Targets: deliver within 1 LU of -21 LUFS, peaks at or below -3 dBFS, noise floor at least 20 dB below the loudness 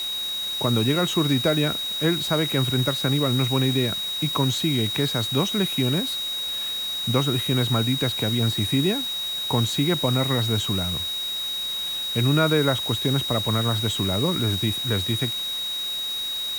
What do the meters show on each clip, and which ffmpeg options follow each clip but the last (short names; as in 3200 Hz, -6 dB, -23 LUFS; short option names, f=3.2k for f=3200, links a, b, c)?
steady tone 3800 Hz; tone level -26 dBFS; noise floor -29 dBFS; noise floor target -43 dBFS; loudness -22.5 LUFS; peak -8.5 dBFS; loudness target -21.0 LUFS
-> -af "bandreject=f=3.8k:w=30"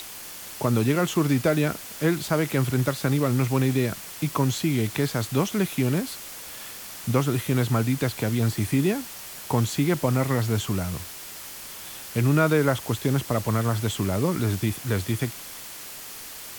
steady tone none; noise floor -40 dBFS; noise floor target -45 dBFS
-> -af "afftdn=nr=6:nf=-40"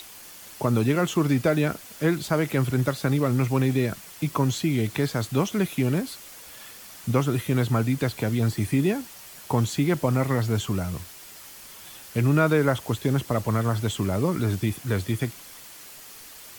noise floor -45 dBFS; loudness -25.0 LUFS; peak -9.0 dBFS; loudness target -21.0 LUFS
-> -af "volume=4dB"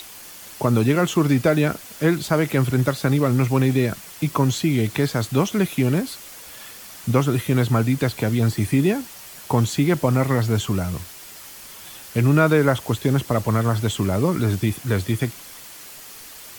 loudness -21.0 LUFS; peak -5.0 dBFS; noise floor -41 dBFS